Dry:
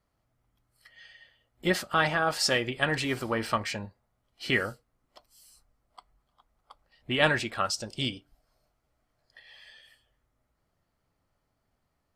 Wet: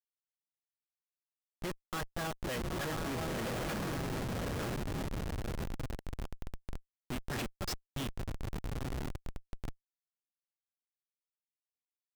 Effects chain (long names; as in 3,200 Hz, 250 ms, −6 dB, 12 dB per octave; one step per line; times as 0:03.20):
granular cloud 242 ms, grains 3.3 per second, spray 27 ms
feedback delay with all-pass diffusion 950 ms, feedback 72%, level −6.5 dB
comparator with hysteresis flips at −34 dBFS
level +1 dB